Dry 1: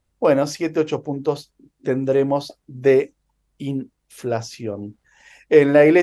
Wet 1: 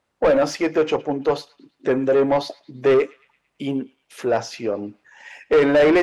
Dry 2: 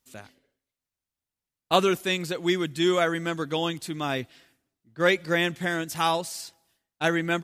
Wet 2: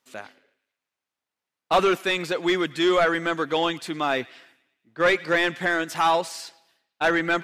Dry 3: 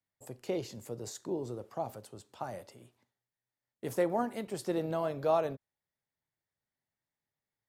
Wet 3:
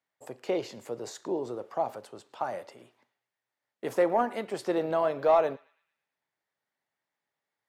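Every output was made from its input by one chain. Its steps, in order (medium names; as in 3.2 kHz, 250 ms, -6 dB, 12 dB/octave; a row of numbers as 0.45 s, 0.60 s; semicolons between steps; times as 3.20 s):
high-pass 110 Hz 6 dB/octave; overdrive pedal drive 23 dB, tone 1.7 kHz, clips at -1 dBFS; band-passed feedback delay 111 ms, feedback 51%, band-pass 2.6 kHz, level -20 dB; trim -6 dB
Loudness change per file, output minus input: -1.0 LU, +3.0 LU, +5.5 LU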